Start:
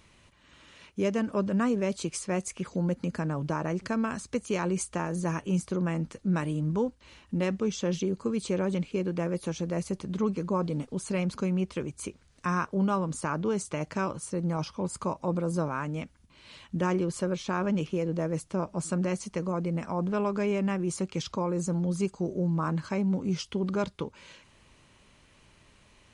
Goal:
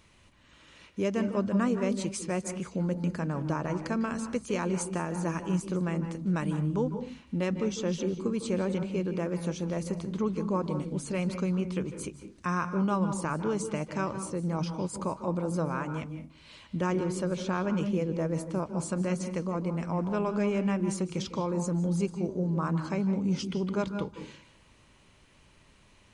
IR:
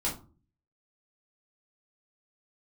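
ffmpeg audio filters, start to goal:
-filter_complex "[0:a]asplit=2[s0][s1];[1:a]atrim=start_sample=2205,highshelf=f=6900:g=-10,adelay=149[s2];[s1][s2]afir=irnorm=-1:irlink=0,volume=0.178[s3];[s0][s3]amix=inputs=2:normalize=0,volume=0.841"

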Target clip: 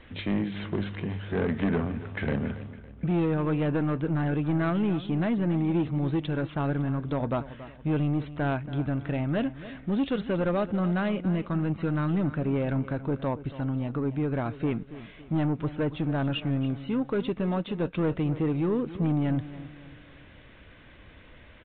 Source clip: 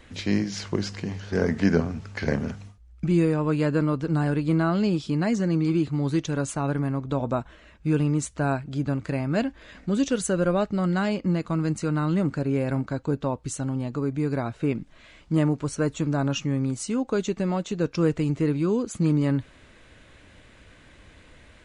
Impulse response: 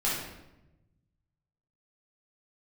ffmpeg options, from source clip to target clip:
-af "aresample=8000,asoftclip=type=tanh:threshold=0.0944,aresample=44100,aecho=1:1:279|558|837|1116:0.178|0.0747|0.0314|0.0132"

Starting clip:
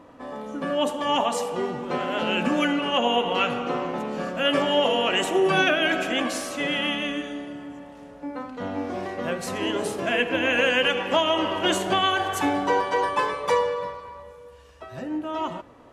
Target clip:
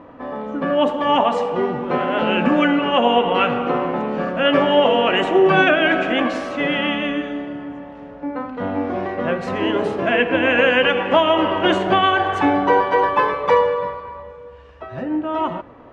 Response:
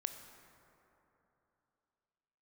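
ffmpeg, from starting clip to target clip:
-af "lowpass=2400,volume=2.24"

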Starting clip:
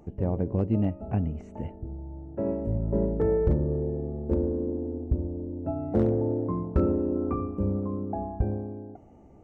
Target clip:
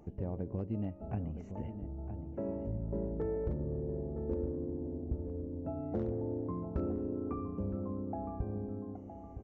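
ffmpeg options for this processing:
-filter_complex "[0:a]acompressor=threshold=0.02:ratio=2,asplit=2[s0][s1];[s1]adelay=964,lowpass=f=1300:p=1,volume=0.355,asplit=2[s2][s3];[s3]adelay=964,lowpass=f=1300:p=1,volume=0.38,asplit=2[s4][s5];[s5]adelay=964,lowpass=f=1300:p=1,volume=0.38,asplit=2[s6][s7];[s7]adelay=964,lowpass=f=1300:p=1,volume=0.38[s8];[s2][s4][s6][s8]amix=inputs=4:normalize=0[s9];[s0][s9]amix=inputs=2:normalize=0,aresample=16000,aresample=44100,volume=0.631"

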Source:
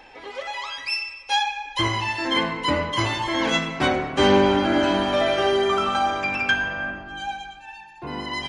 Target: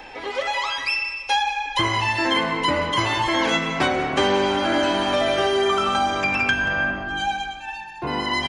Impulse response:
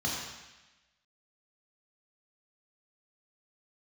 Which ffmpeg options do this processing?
-filter_complex "[0:a]acrossover=split=390|3000|6600[s0][s1][s2][s3];[s0]acompressor=threshold=0.0141:ratio=4[s4];[s1]acompressor=threshold=0.0398:ratio=4[s5];[s2]acompressor=threshold=0.00891:ratio=4[s6];[s3]acompressor=threshold=0.00251:ratio=4[s7];[s4][s5][s6][s7]amix=inputs=4:normalize=0,aecho=1:1:182:0.168,volume=2.37"

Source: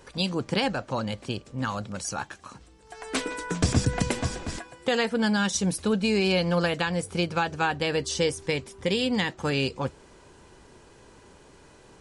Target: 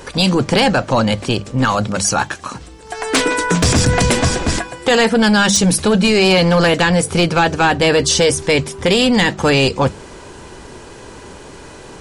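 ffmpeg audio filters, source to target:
-af "bandreject=f=50:t=h:w=6,bandreject=f=100:t=h:w=6,bandreject=f=150:t=h:w=6,bandreject=f=200:t=h:w=6,acontrast=75,apsyclip=7.94,volume=0.398"

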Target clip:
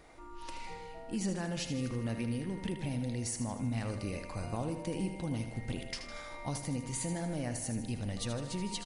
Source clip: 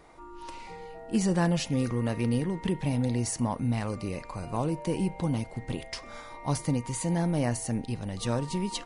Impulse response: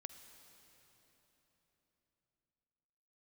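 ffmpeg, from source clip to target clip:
-filter_complex "[0:a]equalizer=f=160:t=o:w=0.67:g=-4,equalizer=f=400:t=o:w=0.67:g=-4,equalizer=f=1000:t=o:w=0.67:g=-7,alimiter=level_in=1.33:limit=0.0631:level=0:latency=1:release=333,volume=0.75,asplit=2[s0][s1];[s1]aecho=0:1:78|156|234|312|390|468|546:0.355|0.199|0.111|0.0623|0.0349|0.0195|0.0109[s2];[s0][s2]amix=inputs=2:normalize=0"

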